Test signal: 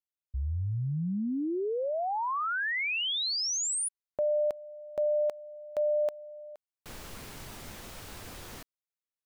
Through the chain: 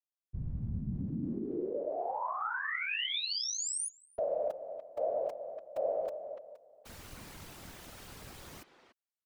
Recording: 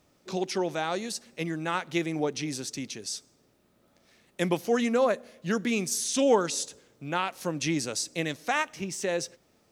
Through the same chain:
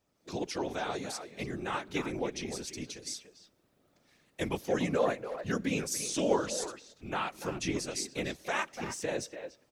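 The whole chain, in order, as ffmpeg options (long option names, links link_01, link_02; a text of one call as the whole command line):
ffmpeg -i in.wav -filter_complex "[0:a]asplit=2[link_01][link_02];[link_02]adelay=290,highpass=300,lowpass=3400,asoftclip=type=hard:threshold=-19.5dB,volume=-9dB[link_03];[link_01][link_03]amix=inputs=2:normalize=0,dynaudnorm=framelen=140:gausssize=3:maxgain=7.5dB,afftfilt=real='hypot(re,im)*cos(2*PI*random(0))':imag='hypot(re,im)*sin(2*PI*random(1))':win_size=512:overlap=0.75,volume=-6.5dB" out.wav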